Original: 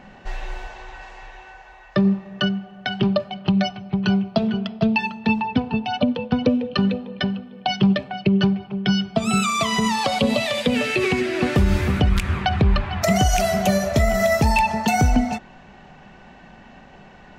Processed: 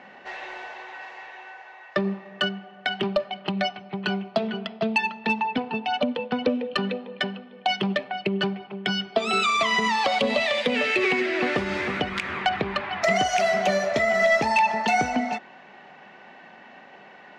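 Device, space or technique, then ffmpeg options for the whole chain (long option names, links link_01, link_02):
intercom: -filter_complex "[0:a]highpass=340,lowpass=4600,equalizer=frequency=2000:width_type=o:width=0.35:gain=5,asoftclip=type=tanh:threshold=-10.5dB,asettb=1/sr,asplit=3[link_01][link_02][link_03];[link_01]atrim=end=9.124[link_04];[link_02]atrim=start=9.12:end=9.57,asetpts=PTS-STARTPTS,afade=type=in:duration=0.004:curve=qsin,afade=type=out:start_time=0.446:duration=0.004:curve=qsin,equalizer=frequency=160:width_type=o:width=0.67:gain=-11,equalizer=frequency=400:width_type=o:width=0.67:gain=8,equalizer=frequency=4000:width_type=o:width=0.67:gain=5[link_05];[link_03]atrim=start=9.566[link_06];[link_04][link_05]acrossfade=duration=0.004:curve1=hsin:curve2=qsin[link_07];[link_07][link_06]acrossfade=duration=0.004:curve1=qsin:curve2=hsin"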